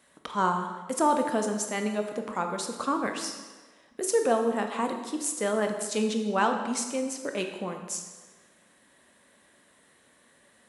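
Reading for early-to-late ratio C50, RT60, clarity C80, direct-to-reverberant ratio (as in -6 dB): 6.5 dB, 1.4 s, 8.0 dB, 4.0 dB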